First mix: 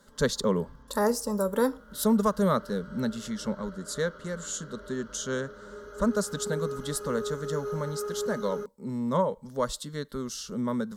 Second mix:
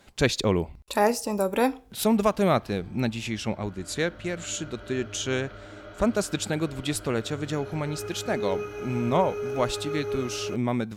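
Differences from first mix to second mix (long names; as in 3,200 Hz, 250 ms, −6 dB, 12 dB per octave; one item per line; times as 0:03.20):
background: entry +1.90 s
master: remove phaser with its sweep stopped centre 490 Hz, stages 8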